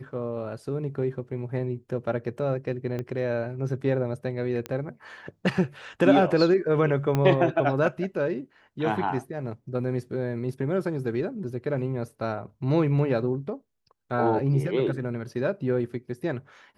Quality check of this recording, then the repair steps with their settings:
2.99 pop -20 dBFS
4.66 pop -17 dBFS
7.15 pop -12 dBFS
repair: de-click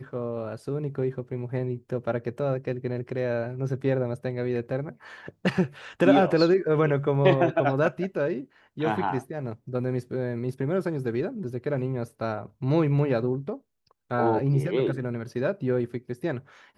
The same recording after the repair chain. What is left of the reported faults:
2.99 pop
7.15 pop

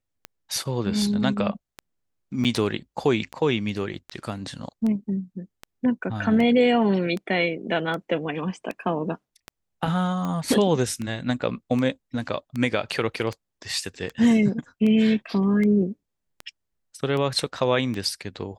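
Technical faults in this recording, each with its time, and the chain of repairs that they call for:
tick 78 rpm -18 dBFS
2.44–2.45 gap 7.7 ms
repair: de-click; interpolate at 2.44, 7.7 ms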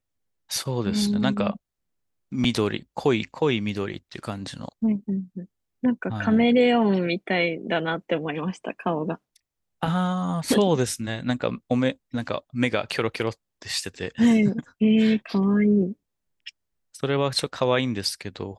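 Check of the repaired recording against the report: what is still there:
none

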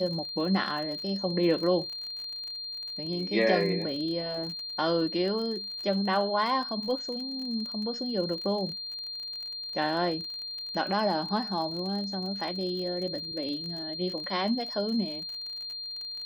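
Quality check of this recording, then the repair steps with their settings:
crackle 37/s -36 dBFS
tone 4200 Hz -35 dBFS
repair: de-click; notch 4200 Hz, Q 30

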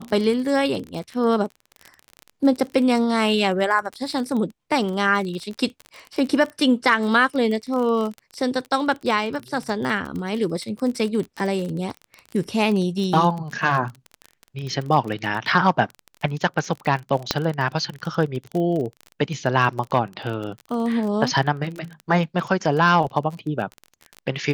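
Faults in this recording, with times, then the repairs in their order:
crackle 27/s -27 dBFS
17.31 pop -3 dBFS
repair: de-click

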